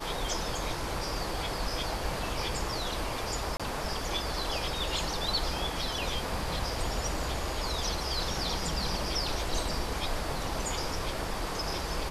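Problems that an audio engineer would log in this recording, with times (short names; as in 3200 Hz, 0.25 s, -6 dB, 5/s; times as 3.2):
3.57–3.6 gap 26 ms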